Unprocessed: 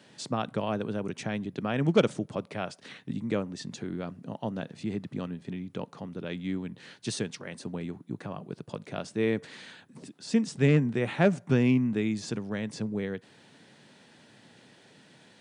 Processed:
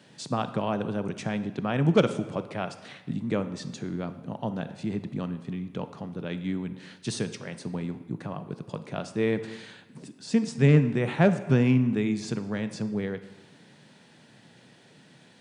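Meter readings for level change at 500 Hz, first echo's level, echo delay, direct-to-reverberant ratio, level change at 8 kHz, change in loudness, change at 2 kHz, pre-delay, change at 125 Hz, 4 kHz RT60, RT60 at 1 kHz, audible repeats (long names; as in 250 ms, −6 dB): +1.5 dB, no echo audible, no echo audible, 11.0 dB, 0.0 dB, +2.5 dB, +1.0 dB, 25 ms, +4.5 dB, 0.90 s, 1.3 s, no echo audible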